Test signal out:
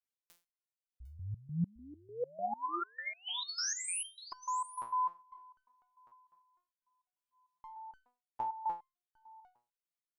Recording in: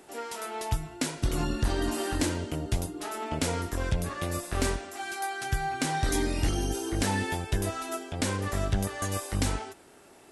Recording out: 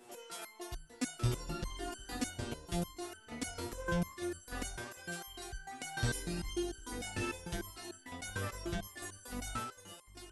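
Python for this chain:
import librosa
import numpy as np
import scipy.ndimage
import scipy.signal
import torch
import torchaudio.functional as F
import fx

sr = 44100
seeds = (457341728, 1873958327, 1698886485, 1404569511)

y = x + 10.0 ** (-11.0 / 20.0) * np.pad(x, (int(752 * sr / 1000.0), 0))[:len(x)]
y = fx.resonator_held(y, sr, hz=6.7, low_hz=120.0, high_hz=1500.0)
y = F.gain(torch.from_numpy(y), 6.5).numpy()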